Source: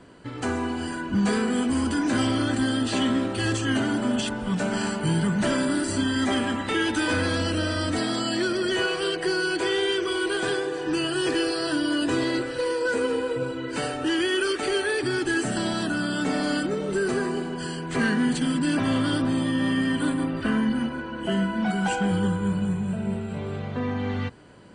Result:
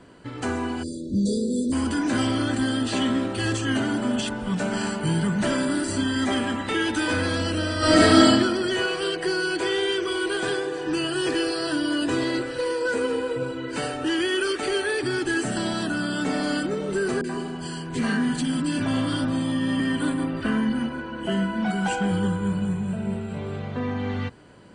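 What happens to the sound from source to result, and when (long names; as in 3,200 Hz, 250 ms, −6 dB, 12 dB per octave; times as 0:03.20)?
0:00.83–0:01.72: time-frequency box erased 640–3,400 Hz
0:07.78–0:08.25: thrown reverb, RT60 1.1 s, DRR −11 dB
0:17.21–0:19.80: three-band delay without the direct sound lows, highs, mids 30/80 ms, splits 460/1,800 Hz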